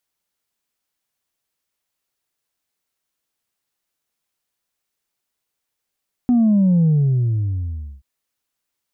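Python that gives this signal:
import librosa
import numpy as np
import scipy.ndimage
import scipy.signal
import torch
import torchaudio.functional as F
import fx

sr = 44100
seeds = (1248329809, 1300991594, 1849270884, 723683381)

y = fx.sub_drop(sr, level_db=-12.0, start_hz=250.0, length_s=1.73, drive_db=1.0, fade_s=1.18, end_hz=65.0)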